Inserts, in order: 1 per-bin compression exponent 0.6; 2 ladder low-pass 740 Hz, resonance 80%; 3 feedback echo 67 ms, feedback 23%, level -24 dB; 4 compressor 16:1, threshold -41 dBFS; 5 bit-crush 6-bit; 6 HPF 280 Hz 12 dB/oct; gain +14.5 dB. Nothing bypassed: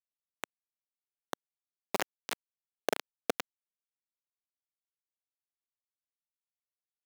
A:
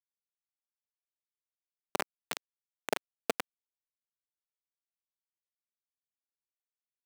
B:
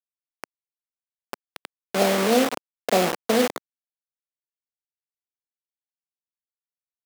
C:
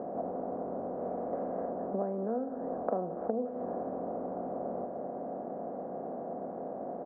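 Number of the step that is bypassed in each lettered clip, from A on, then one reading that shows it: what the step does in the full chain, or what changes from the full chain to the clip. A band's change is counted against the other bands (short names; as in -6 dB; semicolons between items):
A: 1, momentary loudness spread change -4 LU; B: 4, mean gain reduction 2.0 dB; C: 5, crest factor change -13.0 dB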